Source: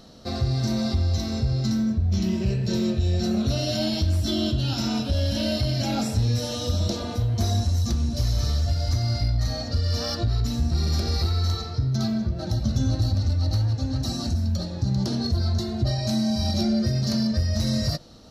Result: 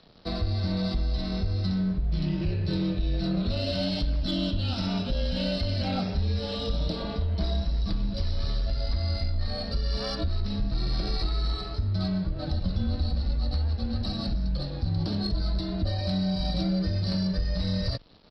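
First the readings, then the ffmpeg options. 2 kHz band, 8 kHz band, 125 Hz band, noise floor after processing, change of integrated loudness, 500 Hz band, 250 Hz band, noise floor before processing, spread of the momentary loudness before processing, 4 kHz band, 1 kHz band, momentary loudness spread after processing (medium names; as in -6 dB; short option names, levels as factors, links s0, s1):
-2.5 dB, -18.5 dB, -5.5 dB, -34 dBFS, -4.5 dB, -3.5 dB, -4.0 dB, -32 dBFS, 3 LU, -3.5 dB, -3.5 dB, 3 LU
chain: -af "acompressor=threshold=0.0562:ratio=2,aresample=11025,aeval=exprs='sgn(val(0))*max(abs(val(0))-0.00335,0)':c=same,aresample=44100,aeval=exprs='0.158*(cos(1*acos(clip(val(0)/0.158,-1,1)))-cos(1*PI/2))+0.00447*(cos(4*acos(clip(val(0)/0.158,-1,1)))-cos(4*PI/2))+0.00126*(cos(8*acos(clip(val(0)/0.158,-1,1)))-cos(8*PI/2))':c=same,afreqshift=-32"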